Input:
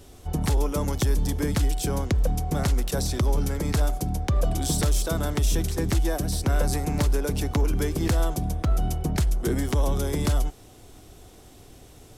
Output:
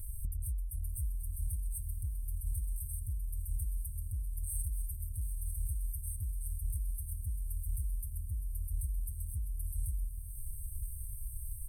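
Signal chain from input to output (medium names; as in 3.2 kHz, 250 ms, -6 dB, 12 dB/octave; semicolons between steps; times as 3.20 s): FFT band-reject 110–7800 Hz; peaking EQ 750 Hz -8 dB 2.1 oct; comb 4.9 ms, depth 65%; de-hum 83.39 Hz, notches 40; in parallel at +1.5 dB: peak limiter -27.5 dBFS, peak gain reduction 14.5 dB; on the sum: compression 16:1, threshold -36 dBFS, peak gain reduction 21.5 dB; on a send: echo that smears into a reverb 1062 ms, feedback 43%, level -8 dB; on the sum: speed mistake 24 fps film run at 25 fps; trim +2.5 dB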